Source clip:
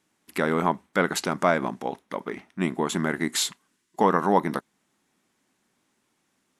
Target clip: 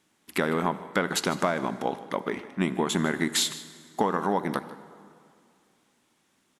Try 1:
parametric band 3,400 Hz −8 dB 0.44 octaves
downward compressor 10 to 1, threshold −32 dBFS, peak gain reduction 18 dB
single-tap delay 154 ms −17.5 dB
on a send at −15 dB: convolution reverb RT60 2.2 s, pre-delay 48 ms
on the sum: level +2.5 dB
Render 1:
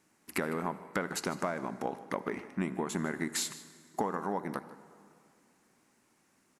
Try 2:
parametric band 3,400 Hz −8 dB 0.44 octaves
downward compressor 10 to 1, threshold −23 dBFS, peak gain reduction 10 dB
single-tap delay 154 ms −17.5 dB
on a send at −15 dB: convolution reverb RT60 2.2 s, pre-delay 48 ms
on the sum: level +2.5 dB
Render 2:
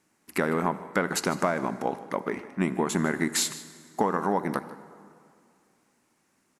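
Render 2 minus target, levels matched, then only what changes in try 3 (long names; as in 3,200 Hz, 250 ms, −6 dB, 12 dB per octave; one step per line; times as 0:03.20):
4,000 Hz band −4.0 dB
change: parametric band 3,400 Hz +3 dB 0.44 octaves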